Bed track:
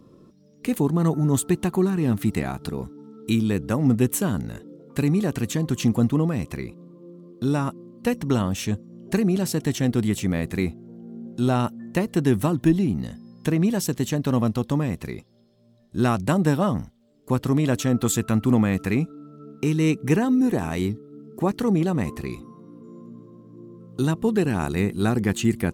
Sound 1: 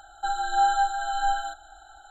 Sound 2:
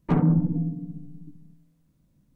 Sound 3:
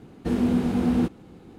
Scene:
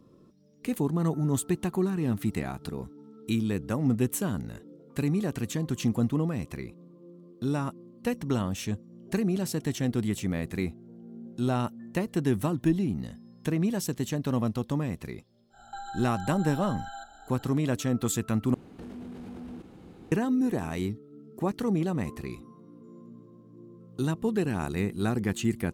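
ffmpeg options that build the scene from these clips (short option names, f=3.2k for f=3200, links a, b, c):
-filter_complex "[0:a]volume=-6dB[a];[1:a]acompressor=threshold=-34dB:ratio=6:attack=3.2:release=140:knee=1:detection=peak[b];[3:a]acompressor=threshold=-35dB:ratio=16:attack=0.13:release=35:knee=1:detection=rms[c];[a]asplit=2[d][e];[d]atrim=end=18.544[f];[c]atrim=end=1.58,asetpts=PTS-STARTPTS,volume=-2dB[g];[e]atrim=start=20.116[h];[b]atrim=end=2.1,asetpts=PTS-STARTPTS,volume=-2.5dB,afade=t=in:d=0.1,afade=t=out:st=2:d=0.1,adelay=15500[i];[f][g]acrossfade=d=0.004:c1=hsin:c2=hsin[j];[j][h]acrossfade=d=0.004:c1=hsin:c2=hsin[k];[k][i]amix=inputs=2:normalize=0"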